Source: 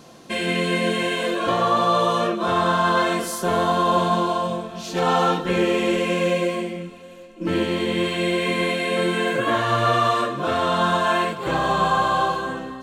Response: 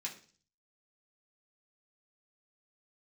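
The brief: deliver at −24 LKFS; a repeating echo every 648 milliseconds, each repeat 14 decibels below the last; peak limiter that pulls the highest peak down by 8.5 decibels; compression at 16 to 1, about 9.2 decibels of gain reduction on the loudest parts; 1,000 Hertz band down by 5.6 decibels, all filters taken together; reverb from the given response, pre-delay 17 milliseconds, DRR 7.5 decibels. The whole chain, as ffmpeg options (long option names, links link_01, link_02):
-filter_complex "[0:a]equalizer=frequency=1000:width_type=o:gain=-7,acompressor=threshold=-27dB:ratio=16,alimiter=level_in=2dB:limit=-24dB:level=0:latency=1,volume=-2dB,aecho=1:1:648|1296:0.2|0.0399,asplit=2[link_01][link_02];[1:a]atrim=start_sample=2205,adelay=17[link_03];[link_02][link_03]afir=irnorm=-1:irlink=0,volume=-7dB[link_04];[link_01][link_04]amix=inputs=2:normalize=0,volume=9.5dB"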